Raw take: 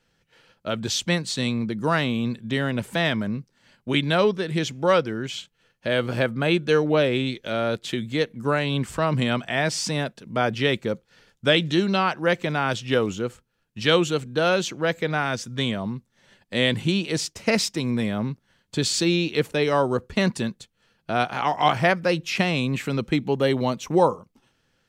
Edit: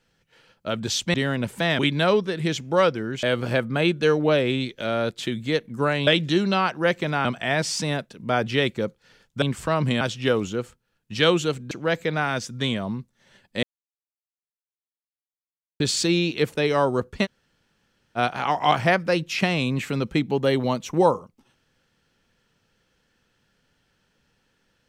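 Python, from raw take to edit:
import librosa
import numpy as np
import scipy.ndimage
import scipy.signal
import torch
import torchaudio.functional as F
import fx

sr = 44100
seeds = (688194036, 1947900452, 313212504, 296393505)

y = fx.edit(x, sr, fx.cut(start_s=1.14, length_s=1.35),
    fx.cut(start_s=3.14, length_s=0.76),
    fx.cut(start_s=5.34, length_s=0.55),
    fx.swap(start_s=8.73, length_s=0.59, other_s=11.49, other_length_s=1.18),
    fx.cut(start_s=14.37, length_s=0.31),
    fx.silence(start_s=16.6, length_s=2.17),
    fx.room_tone_fill(start_s=20.22, length_s=0.92, crossfade_s=0.04), tone=tone)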